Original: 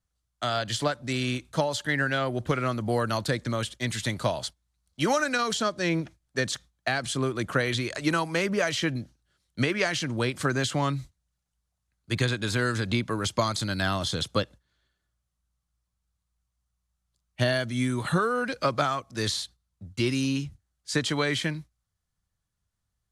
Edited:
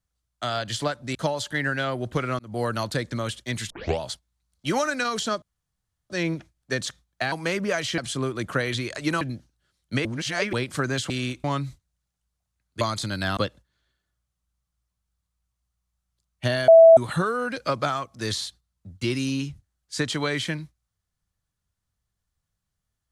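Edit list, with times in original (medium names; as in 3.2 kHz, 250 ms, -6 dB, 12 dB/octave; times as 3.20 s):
1.15–1.49 s: move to 10.76 s
2.73–2.98 s: fade in
4.04 s: tape start 0.30 s
5.76 s: insert room tone 0.68 s
8.21–8.87 s: move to 6.98 s
9.71–10.19 s: reverse
12.13–13.39 s: delete
13.95–14.33 s: delete
17.64–17.93 s: bleep 657 Hz -7 dBFS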